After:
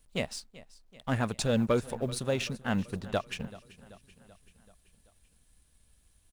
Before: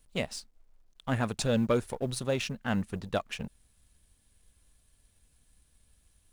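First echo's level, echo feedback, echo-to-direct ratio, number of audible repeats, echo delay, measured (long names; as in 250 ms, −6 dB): −19.0 dB, 58%, −17.0 dB, 4, 384 ms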